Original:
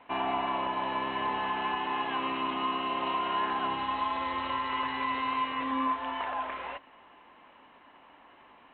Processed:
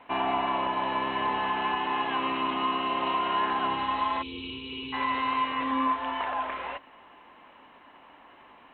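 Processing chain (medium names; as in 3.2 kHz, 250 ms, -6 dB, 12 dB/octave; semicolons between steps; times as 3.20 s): time-frequency box 4.22–4.93 s, 510–2200 Hz -28 dB; trim +3 dB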